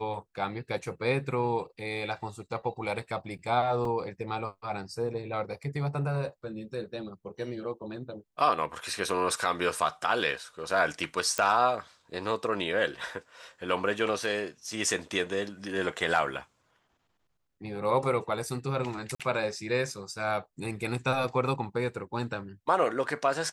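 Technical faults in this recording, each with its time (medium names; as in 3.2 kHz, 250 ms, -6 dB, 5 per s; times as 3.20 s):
3.85 s: dropout 2.9 ms
11.38 s: pop -13 dBFS
19.15–19.20 s: dropout 46 ms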